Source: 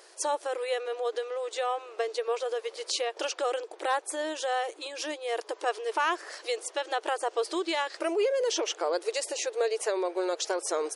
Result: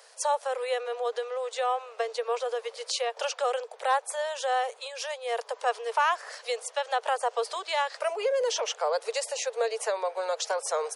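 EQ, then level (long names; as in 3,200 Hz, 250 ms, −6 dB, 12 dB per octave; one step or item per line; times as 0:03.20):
dynamic equaliser 910 Hz, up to +4 dB, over −40 dBFS, Q 1.2
Butterworth high-pass 450 Hz 72 dB per octave
0.0 dB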